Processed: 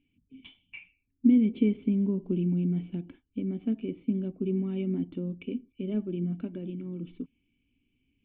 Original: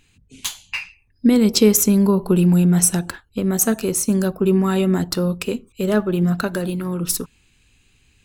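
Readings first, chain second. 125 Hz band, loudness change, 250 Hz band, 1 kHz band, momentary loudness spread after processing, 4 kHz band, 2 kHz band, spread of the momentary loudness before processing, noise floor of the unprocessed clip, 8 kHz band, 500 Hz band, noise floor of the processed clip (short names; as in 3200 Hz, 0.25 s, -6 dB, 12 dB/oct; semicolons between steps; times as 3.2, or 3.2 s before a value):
-12.0 dB, -11.0 dB, -9.5 dB, under -25 dB, 16 LU, under -25 dB, under -20 dB, 15 LU, -60 dBFS, under -40 dB, -15.5 dB, -76 dBFS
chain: overdrive pedal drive 8 dB, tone 1100 Hz, clips at -2 dBFS; vocal tract filter i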